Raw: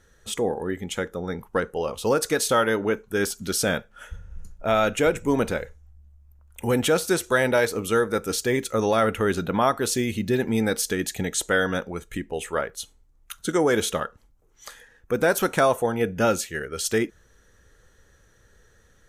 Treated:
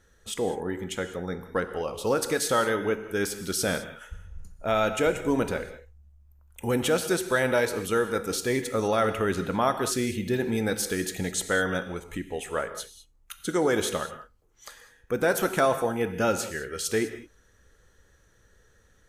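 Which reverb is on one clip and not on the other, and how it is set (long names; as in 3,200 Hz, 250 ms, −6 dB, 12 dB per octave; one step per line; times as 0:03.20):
reverb whose tail is shaped and stops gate 230 ms flat, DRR 9 dB
level −3.5 dB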